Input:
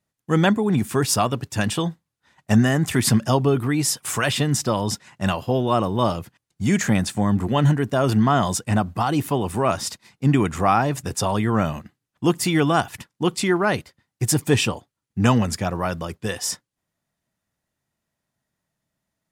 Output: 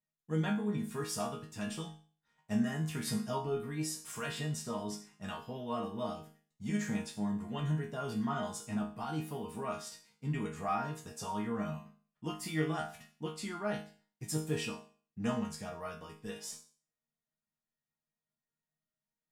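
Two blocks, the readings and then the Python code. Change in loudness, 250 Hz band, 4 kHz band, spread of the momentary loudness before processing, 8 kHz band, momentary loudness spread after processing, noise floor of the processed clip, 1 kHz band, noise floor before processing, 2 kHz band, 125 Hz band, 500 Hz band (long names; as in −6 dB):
−16.0 dB, −15.0 dB, −17.0 dB, 8 LU, −17.0 dB, 10 LU, below −85 dBFS, −16.5 dB, −82 dBFS, −16.5 dB, −17.0 dB, −16.0 dB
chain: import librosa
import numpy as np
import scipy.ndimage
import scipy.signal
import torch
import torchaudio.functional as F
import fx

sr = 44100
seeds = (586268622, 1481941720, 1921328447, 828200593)

y = fx.low_shelf(x, sr, hz=130.0, db=5.0)
y = fx.resonator_bank(y, sr, root=51, chord='sus4', decay_s=0.41)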